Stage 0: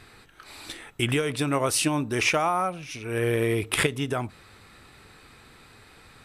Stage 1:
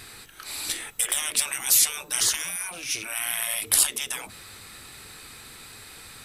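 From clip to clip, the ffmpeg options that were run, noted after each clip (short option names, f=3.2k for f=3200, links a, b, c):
-af "afftfilt=real='re*lt(hypot(re,im),0.0631)':imag='im*lt(hypot(re,im),0.0631)':win_size=1024:overlap=0.75,crystalizer=i=4:c=0,volume=1.5dB"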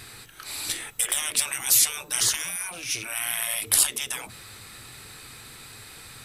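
-af "equalizer=f=120:w=3.8:g=7.5"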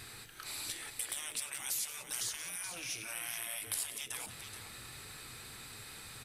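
-af "acompressor=threshold=-35dB:ratio=2.5,aecho=1:1:97|179|428:0.126|0.211|0.355,volume=-5.5dB"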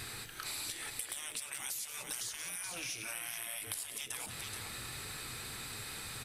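-af "acompressor=threshold=-43dB:ratio=6,volume=5.5dB"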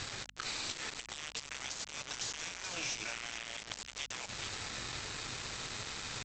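-af "aresample=16000,acrusher=bits=6:mix=0:aa=0.000001,aresample=44100,aeval=exprs='val(0)+0.000501*(sin(2*PI*50*n/s)+sin(2*PI*2*50*n/s)/2+sin(2*PI*3*50*n/s)/3+sin(2*PI*4*50*n/s)/4+sin(2*PI*5*50*n/s)/5)':c=same,volume=2.5dB"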